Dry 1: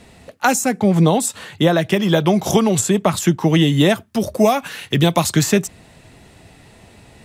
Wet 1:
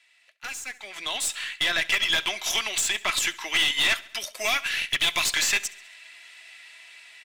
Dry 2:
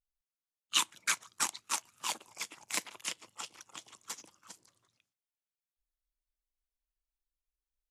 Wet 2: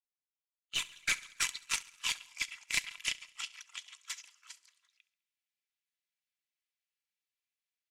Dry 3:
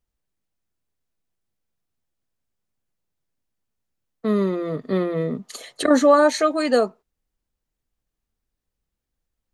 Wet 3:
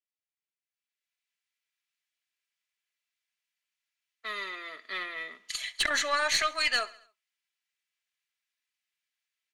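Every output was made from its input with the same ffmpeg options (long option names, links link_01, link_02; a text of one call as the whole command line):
ffmpeg -i in.wav -filter_complex "[0:a]highpass=frequency=2200:width_type=q:width=1.8,aecho=1:1:3:0.38,volume=19dB,asoftclip=hard,volume=-19dB,highshelf=frequency=8000:gain=-10,aeval=exprs='0.75*(cos(1*acos(clip(val(0)/0.75,-1,1)))-cos(1*PI/2))+0.376*(cos(3*acos(clip(val(0)/0.75,-1,1)))-cos(3*PI/2))+0.0841*(cos(4*acos(clip(val(0)/0.75,-1,1)))-cos(4*PI/2))':channel_layout=same,asplit=2[link_01][link_02];[link_02]aecho=0:1:68|136|204|272:0.0944|0.051|0.0275|0.0149[link_03];[link_01][link_03]amix=inputs=2:normalize=0,dynaudnorm=framelen=650:gausssize=3:maxgain=15dB,volume=-6.5dB" out.wav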